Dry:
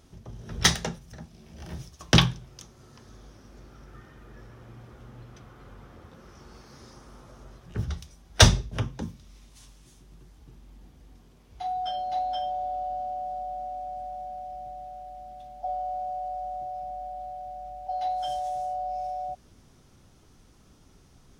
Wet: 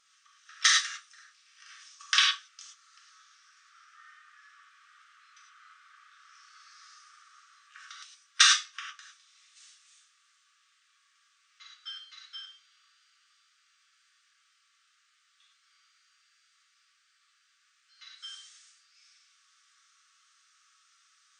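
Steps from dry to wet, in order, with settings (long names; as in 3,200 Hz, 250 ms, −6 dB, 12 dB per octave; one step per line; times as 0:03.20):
brick-wall band-pass 1,100–9,200 Hz
reverb whose tail is shaped and stops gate 130 ms flat, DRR −3 dB
level −3.5 dB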